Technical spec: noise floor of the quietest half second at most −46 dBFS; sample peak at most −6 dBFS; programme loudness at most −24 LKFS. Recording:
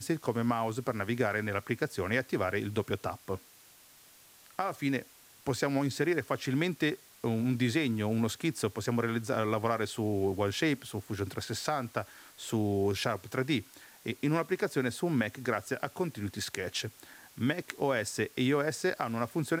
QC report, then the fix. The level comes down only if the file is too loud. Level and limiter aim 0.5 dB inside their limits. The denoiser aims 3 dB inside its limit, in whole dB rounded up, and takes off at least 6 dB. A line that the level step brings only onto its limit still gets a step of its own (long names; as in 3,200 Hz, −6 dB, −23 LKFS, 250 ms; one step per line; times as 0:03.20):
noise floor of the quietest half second −58 dBFS: in spec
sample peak −12.5 dBFS: in spec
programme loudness −32.5 LKFS: in spec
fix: no processing needed